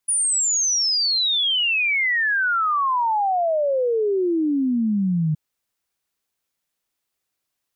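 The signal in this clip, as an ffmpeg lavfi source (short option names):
-f lavfi -i "aevalsrc='0.133*clip(min(t,5.27-t)/0.01,0,1)*sin(2*PI*9800*5.27/log(150/9800)*(exp(log(150/9800)*t/5.27)-1))':d=5.27:s=44100"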